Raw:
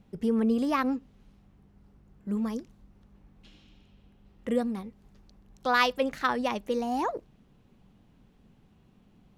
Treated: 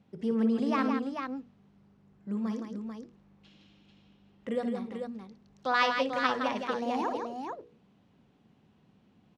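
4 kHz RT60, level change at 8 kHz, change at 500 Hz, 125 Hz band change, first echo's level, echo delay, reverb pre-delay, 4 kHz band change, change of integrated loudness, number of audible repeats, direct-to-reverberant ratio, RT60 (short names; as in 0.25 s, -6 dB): none, -5.0 dB, -2.0 dB, -1.5 dB, -10.5 dB, 59 ms, none, -1.5 dB, -2.5 dB, 3, none, none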